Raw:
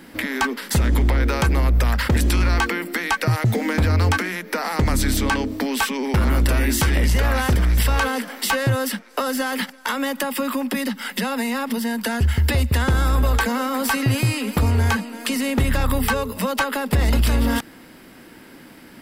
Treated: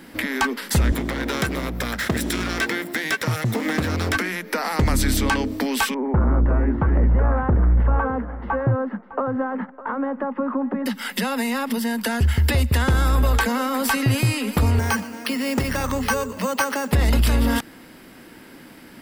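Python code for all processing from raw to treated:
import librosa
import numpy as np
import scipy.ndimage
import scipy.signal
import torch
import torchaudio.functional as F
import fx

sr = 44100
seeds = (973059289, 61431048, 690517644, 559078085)

y = fx.chain(x, sr, fx.lower_of_two(delay_ms=0.54),
    fx.highpass(hz=140.0, slope=12), at=(0.92, 4.15))
y = fx.chain(y, sr, fx.lowpass(hz=1300.0, slope=24),
    fx.echo_single(ms=606, db=-16.0), at=(5.94, 10.86))
y = fx.chain(y, sr, fx.highpass(hz=160.0, slope=6),
    fx.resample_bad(factor=6, down='filtered', up='hold'),
    fx.echo_feedback(ms=121, feedback_pct=32, wet_db=-20.0), at=(14.79, 16.92))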